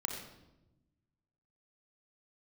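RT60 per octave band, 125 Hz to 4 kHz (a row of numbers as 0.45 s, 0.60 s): 1.8 s, 1.5 s, 1.1 s, 0.85 s, 0.70 s, 0.70 s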